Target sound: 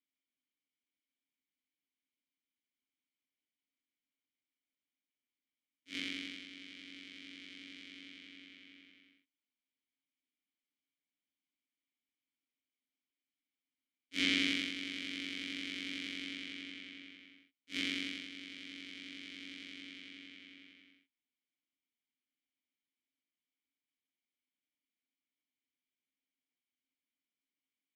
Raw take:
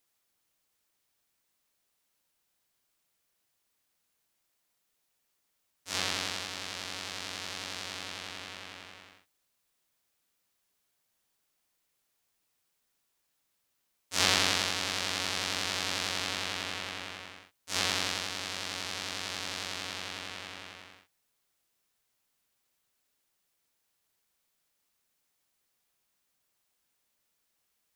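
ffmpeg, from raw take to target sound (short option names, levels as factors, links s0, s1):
-filter_complex "[0:a]aeval=exprs='0.631*(cos(1*acos(clip(val(0)/0.631,-1,1)))-cos(1*PI/2))+0.0562*(cos(7*acos(clip(val(0)/0.631,-1,1)))-cos(7*PI/2))':c=same,asplit=3[s0][s1][s2];[s0]bandpass=f=270:t=q:w=8,volume=1[s3];[s1]bandpass=f=2290:t=q:w=8,volume=0.501[s4];[s2]bandpass=f=3010:t=q:w=8,volume=0.355[s5];[s3][s4][s5]amix=inputs=3:normalize=0,volume=2.51"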